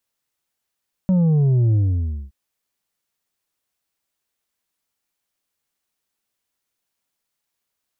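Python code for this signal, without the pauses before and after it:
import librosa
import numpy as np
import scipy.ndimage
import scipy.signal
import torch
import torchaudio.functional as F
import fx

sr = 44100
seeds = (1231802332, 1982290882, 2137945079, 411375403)

y = fx.sub_drop(sr, level_db=-14.0, start_hz=190.0, length_s=1.22, drive_db=5, fade_s=0.57, end_hz=65.0)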